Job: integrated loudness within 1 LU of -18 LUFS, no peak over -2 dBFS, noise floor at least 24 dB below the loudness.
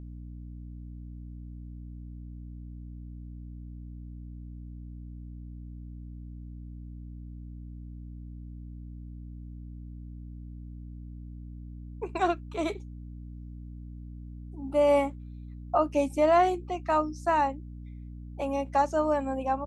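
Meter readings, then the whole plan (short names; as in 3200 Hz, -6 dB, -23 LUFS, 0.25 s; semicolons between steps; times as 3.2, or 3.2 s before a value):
hum 60 Hz; harmonics up to 300 Hz; hum level -39 dBFS; loudness -27.5 LUFS; peak -12.5 dBFS; loudness target -18.0 LUFS
-> notches 60/120/180/240/300 Hz; gain +9.5 dB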